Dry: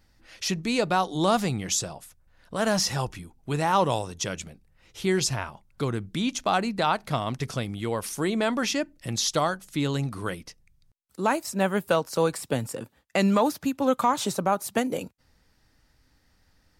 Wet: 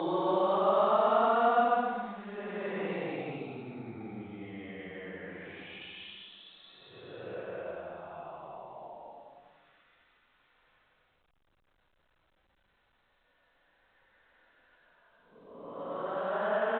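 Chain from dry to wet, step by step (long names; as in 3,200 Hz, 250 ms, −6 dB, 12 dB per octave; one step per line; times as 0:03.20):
extreme stretch with random phases 12×, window 0.10 s, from 0:01.22
three-way crossover with the lows and the highs turned down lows −18 dB, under 290 Hz, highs −17 dB, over 2,400 Hz
single-tap delay 115 ms −22 dB
level −4 dB
A-law companding 64 kbit/s 8,000 Hz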